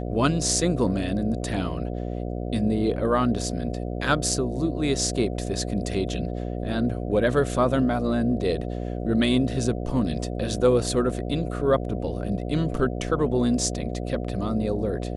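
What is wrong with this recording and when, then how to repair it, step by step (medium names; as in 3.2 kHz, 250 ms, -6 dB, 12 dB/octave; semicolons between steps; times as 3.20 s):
buzz 60 Hz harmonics 12 -30 dBFS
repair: de-hum 60 Hz, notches 12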